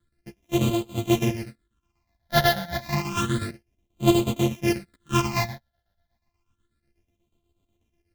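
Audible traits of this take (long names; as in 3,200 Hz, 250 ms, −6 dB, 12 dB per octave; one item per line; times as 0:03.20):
a buzz of ramps at a fixed pitch in blocks of 128 samples
phaser sweep stages 8, 0.3 Hz, lowest notch 330–1,700 Hz
chopped level 8.2 Hz, depth 60%, duty 65%
a shimmering, thickened sound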